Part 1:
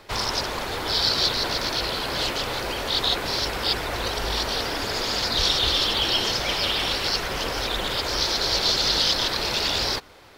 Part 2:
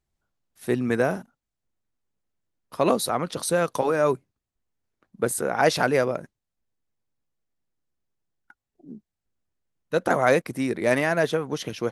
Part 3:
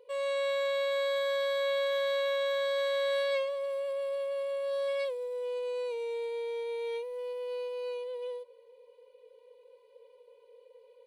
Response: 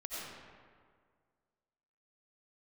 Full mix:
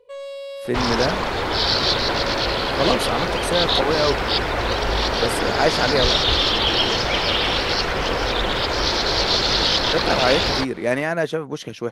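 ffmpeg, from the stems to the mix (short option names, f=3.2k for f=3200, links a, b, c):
-filter_complex "[0:a]highshelf=f=5.8k:g=-11.5,acontrast=31,adelay=650,volume=1.5dB[a];[1:a]volume=0.5dB,asplit=2[b][c];[2:a]asoftclip=type=hard:threshold=-31.5dB,volume=1.5dB[d];[c]apad=whole_len=487821[e];[d][e]sidechaincompress=threshold=-35dB:ratio=3:attack=8.6:release=960[f];[a][b][f]amix=inputs=3:normalize=0,highshelf=f=8.9k:g=-7.5"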